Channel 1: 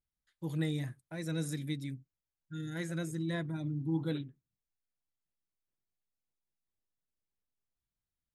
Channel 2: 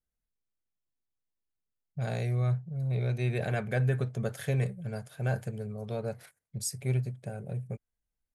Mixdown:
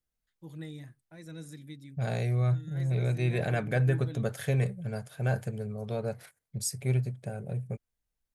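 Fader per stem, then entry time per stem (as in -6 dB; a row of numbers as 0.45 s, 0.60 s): -8.5 dB, +1.5 dB; 0.00 s, 0.00 s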